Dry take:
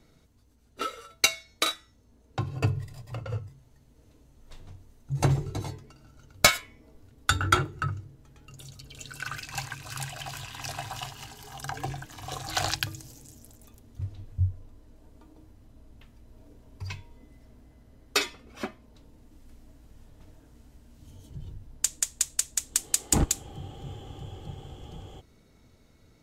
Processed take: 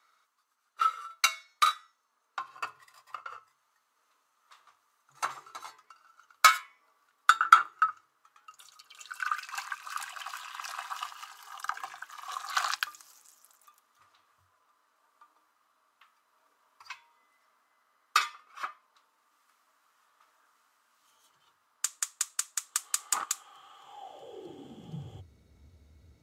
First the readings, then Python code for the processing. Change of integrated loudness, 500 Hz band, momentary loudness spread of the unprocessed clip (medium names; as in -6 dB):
0.0 dB, -14.0 dB, 20 LU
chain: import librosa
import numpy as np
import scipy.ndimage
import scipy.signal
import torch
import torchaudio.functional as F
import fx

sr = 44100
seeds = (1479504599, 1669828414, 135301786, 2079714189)

y = fx.filter_sweep_highpass(x, sr, from_hz=1200.0, to_hz=72.0, start_s=23.78, end_s=25.37, q=6.1)
y = F.gain(torch.from_numpy(y), -5.5).numpy()